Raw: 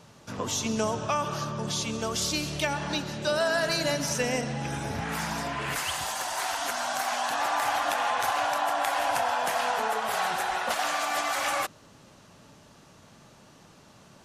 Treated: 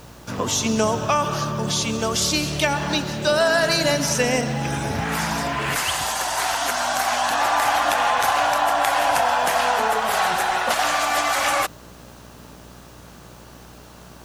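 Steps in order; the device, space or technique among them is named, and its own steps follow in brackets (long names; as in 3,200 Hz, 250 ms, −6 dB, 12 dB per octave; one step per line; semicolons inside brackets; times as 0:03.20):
video cassette with head-switching buzz (hum with harmonics 60 Hz, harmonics 28, −54 dBFS −4 dB per octave; white noise bed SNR 33 dB)
level +7.5 dB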